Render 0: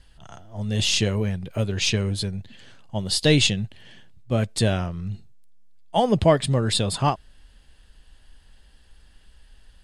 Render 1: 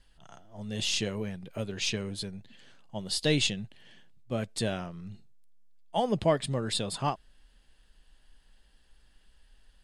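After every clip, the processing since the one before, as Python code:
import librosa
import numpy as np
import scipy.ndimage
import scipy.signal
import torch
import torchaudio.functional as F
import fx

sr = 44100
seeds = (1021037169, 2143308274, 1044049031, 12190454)

y = fx.peak_eq(x, sr, hz=82.0, db=-14.0, octaves=0.69)
y = F.gain(torch.from_numpy(y), -7.5).numpy()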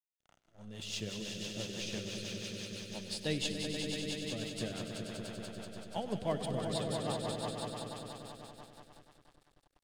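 y = fx.echo_swell(x, sr, ms=96, loudest=5, wet_db=-6)
y = np.sign(y) * np.maximum(np.abs(y) - 10.0 ** (-45.5 / 20.0), 0.0)
y = fx.rotary(y, sr, hz=6.0)
y = F.gain(torch.from_numpy(y), -8.0).numpy()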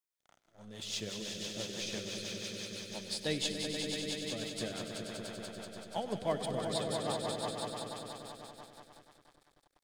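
y = fx.low_shelf(x, sr, hz=210.0, db=-8.5)
y = fx.notch(y, sr, hz=2800.0, q=9.9)
y = F.gain(torch.from_numpy(y), 2.5).numpy()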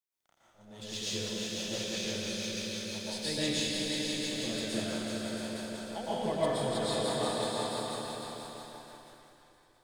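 y = fx.rev_plate(x, sr, seeds[0], rt60_s=1.1, hf_ratio=0.9, predelay_ms=105, drr_db=-8.5)
y = F.gain(torch.from_numpy(y), -4.5).numpy()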